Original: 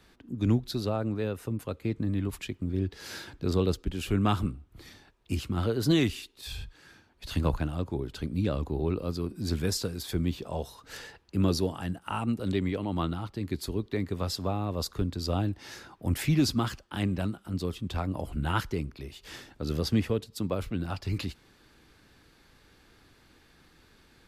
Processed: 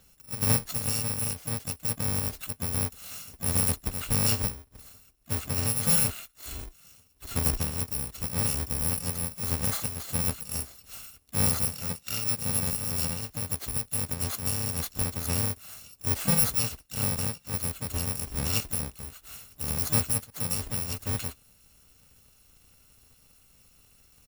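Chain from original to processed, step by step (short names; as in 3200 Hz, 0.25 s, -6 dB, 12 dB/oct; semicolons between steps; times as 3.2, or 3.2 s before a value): FFT order left unsorted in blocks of 128 samples; harmoniser -3 st -14 dB, +5 st -11 dB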